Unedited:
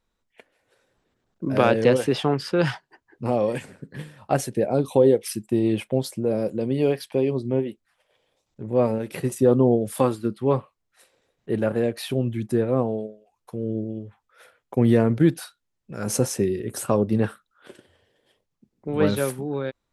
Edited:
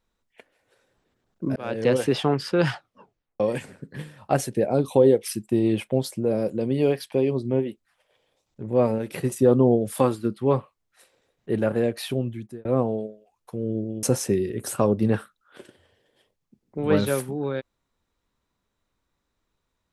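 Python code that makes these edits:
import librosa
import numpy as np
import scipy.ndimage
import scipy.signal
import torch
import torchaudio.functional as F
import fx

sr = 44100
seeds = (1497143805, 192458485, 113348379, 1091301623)

y = fx.edit(x, sr, fx.fade_in_span(start_s=1.56, length_s=0.46),
    fx.tape_stop(start_s=2.71, length_s=0.69),
    fx.fade_out_span(start_s=12.06, length_s=0.59),
    fx.cut(start_s=14.03, length_s=2.1), tone=tone)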